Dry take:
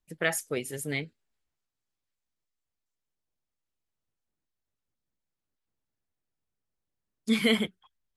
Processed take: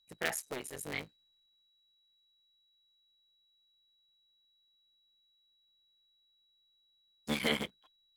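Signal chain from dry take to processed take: cycle switcher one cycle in 3, muted; whistle 3.9 kHz -66 dBFS; bass shelf 330 Hz -7 dB; trim -4 dB

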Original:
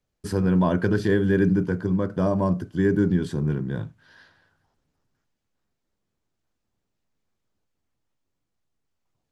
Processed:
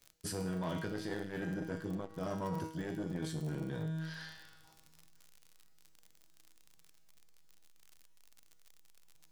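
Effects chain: in parallel at -4.5 dB: hard clipper -23 dBFS, distortion -8 dB; on the sum: feedback comb 160 Hz, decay 0.79 s, harmonics all, mix 90%; reverse; compression 8:1, threshold -50 dBFS, peak gain reduction 20.5 dB; reverse; crackle 58 per s -63 dBFS; treble shelf 2.5 kHz +10 dB; transformer saturation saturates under 370 Hz; trim +15.5 dB

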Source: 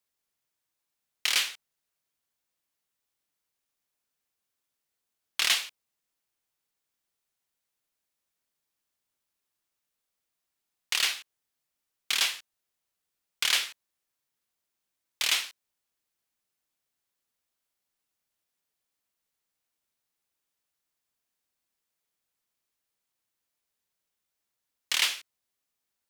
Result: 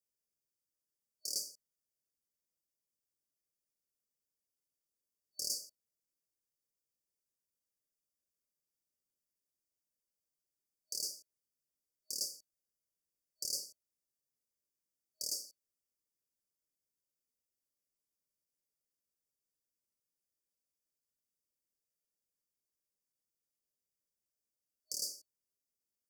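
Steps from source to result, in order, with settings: FFT band-reject 630–4500 Hz; trim -7 dB

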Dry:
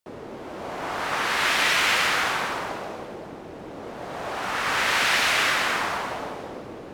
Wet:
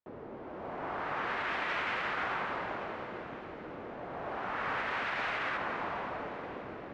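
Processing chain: low-pass 1.9 kHz 12 dB/octave, from 5.57 s 1.1 kHz; peak limiter -18.5 dBFS, peak gain reduction 6.5 dB; echo that smears into a reverb 526 ms, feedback 53%, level -10 dB; trim -7 dB

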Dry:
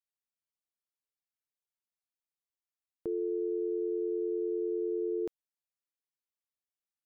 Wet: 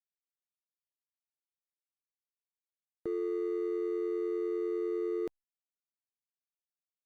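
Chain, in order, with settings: median filter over 41 samples; Opus 96 kbps 48 kHz

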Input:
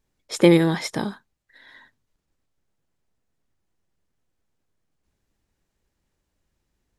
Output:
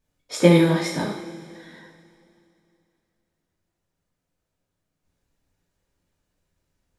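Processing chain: two-slope reverb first 0.55 s, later 2.8 s, from -17 dB, DRR -4 dB; trim -4.5 dB

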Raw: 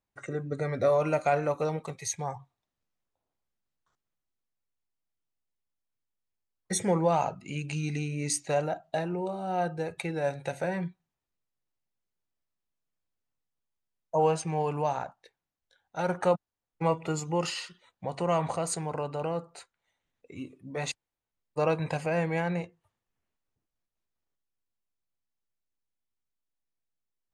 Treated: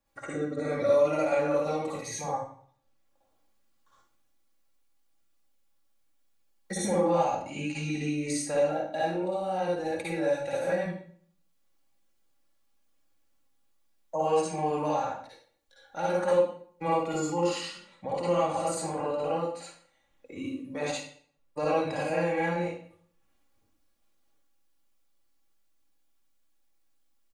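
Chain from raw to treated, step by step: comb 3.6 ms, depth 61%; reverberation RT60 0.50 s, pre-delay 49 ms, DRR -7 dB; three bands compressed up and down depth 40%; trim -8 dB

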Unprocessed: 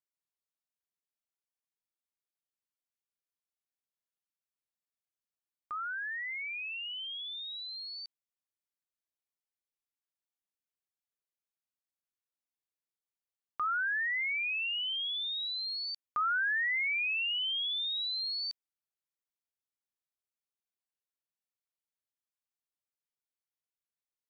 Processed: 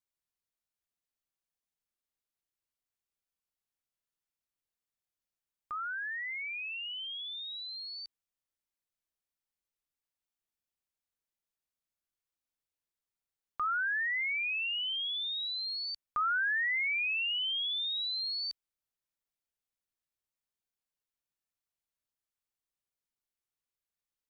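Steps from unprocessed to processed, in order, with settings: bass shelf 87 Hz +10.5 dB

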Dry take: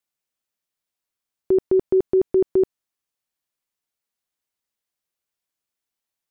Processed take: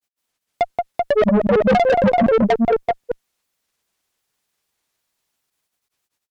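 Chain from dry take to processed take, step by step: granulator 100 ms, grains 20 per s, spray 982 ms, pitch spread up and down by 12 st; on a send: multi-tap echo 178/385 ms -6.5/-4.5 dB; on the sum: Chebyshev shaper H 5 -16 dB, 8 -26 dB, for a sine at -8.5 dBFS; saturation -17.5 dBFS, distortion -15 dB; trim +6.5 dB

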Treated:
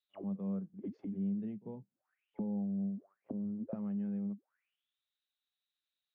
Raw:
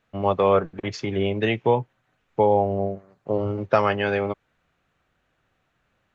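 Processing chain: pre-echo 44 ms -19 dB; auto-wah 200–3900 Hz, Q 12, down, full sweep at -23.5 dBFS; trim -2 dB

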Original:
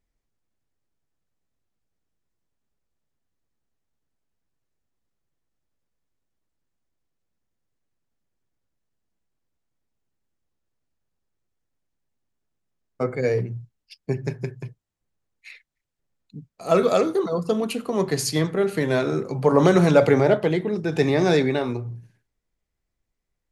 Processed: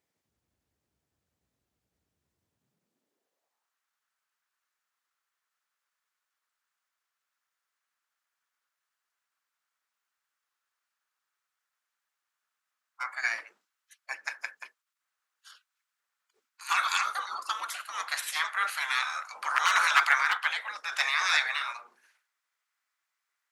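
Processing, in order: one-sided wavefolder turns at -8.5 dBFS; spectral gate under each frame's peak -20 dB weak; high-pass sweep 63 Hz -> 1.3 kHz, 2.32–3.76 s; trim +3.5 dB

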